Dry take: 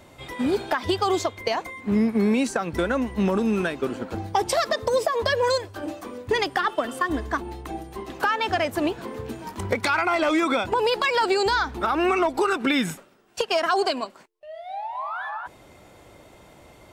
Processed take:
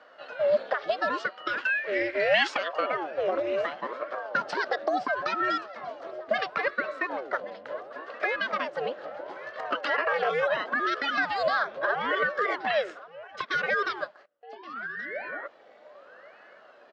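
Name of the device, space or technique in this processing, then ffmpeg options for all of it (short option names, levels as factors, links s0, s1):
voice changer toy: -filter_complex "[0:a]asplit=3[s0][s1][s2];[s0]afade=t=out:st=1.57:d=0.02[s3];[s1]highshelf=f=1500:t=q:w=3:g=10,afade=t=in:st=1.57:d=0.02,afade=t=out:st=2.67:d=0.02[s4];[s2]afade=t=in:st=2.67:d=0.02[s5];[s3][s4][s5]amix=inputs=3:normalize=0,aecho=1:1:1125:0.106,aeval=exprs='val(0)*sin(2*PI*490*n/s+490*0.75/0.73*sin(2*PI*0.73*n/s))':c=same,highpass=520,equalizer=f=590:t=q:w=4:g=9,equalizer=f=920:t=q:w=4:g=-8,equalizer=f=1600:t=q:w=4:g=3,equalizer=f=2400:t=q:w=4:g=-7,equalizer=f=3600:t=q:w=4:g=-6,lowpass=f=4100:w=0.5412,lowpass=f=4100:w=1.3066"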